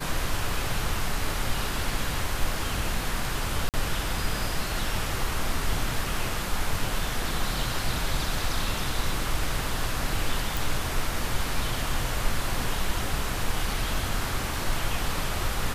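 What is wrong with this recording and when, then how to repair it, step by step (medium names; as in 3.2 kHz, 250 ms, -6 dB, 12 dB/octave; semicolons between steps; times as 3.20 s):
3.69–3.74 s: dropout 48 ms
10.57 s: pop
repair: de-click; interpolate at 3.69 s, 48 ms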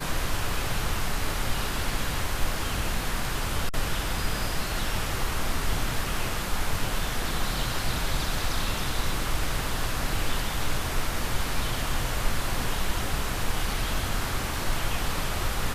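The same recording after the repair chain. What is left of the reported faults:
nothing left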